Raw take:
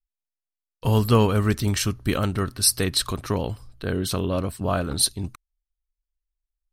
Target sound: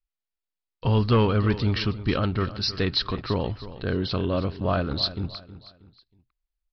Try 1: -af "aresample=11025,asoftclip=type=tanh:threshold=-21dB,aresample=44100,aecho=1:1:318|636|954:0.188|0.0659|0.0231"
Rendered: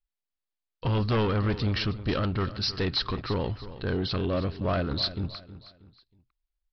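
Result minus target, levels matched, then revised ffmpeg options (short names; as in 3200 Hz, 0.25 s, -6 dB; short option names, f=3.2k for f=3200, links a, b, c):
soft clip: distortion +10 dB
-af "aresample=11025,asoftclip=type=tanh:threshold=-10.5dB,aresample=44100,aecho=1:1:318|636|954:0.188|0.0659|0.0231"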